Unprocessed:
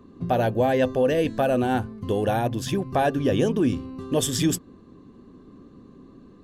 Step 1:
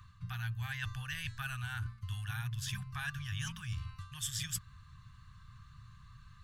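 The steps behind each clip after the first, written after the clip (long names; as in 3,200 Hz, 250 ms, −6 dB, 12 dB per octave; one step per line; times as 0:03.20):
elliptic band-stop filter 120–1,300 Hz, stop band 50 dB
reversed playback
downward compressor 4 to 1, threshold −42 dBFS, peak gain reduction 16.5 dB
reversed playback
level +4 dB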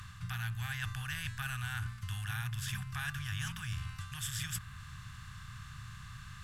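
compressor on every frequency bin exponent 0.6
dynamic equaliser 5,600 Hz, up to −4 dB, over −51 dBFS, Q 0.93
level −1.5 dB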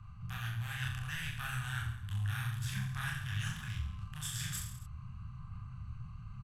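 adaptive Wiener filter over 25 samples
multi-voice chorus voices 6, 1.5 Hz, delay 28 ms, depth 3 ms
reverse bouncing-ball delay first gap 40 ms, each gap 1.15×, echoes 5
level +2.5 dB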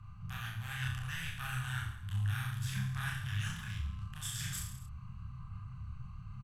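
double-tracking delay 30 ms −7 dB
level −1 dB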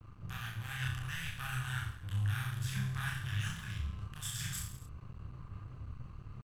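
dead-zone distortion −54.5 dBFS
level +1 dB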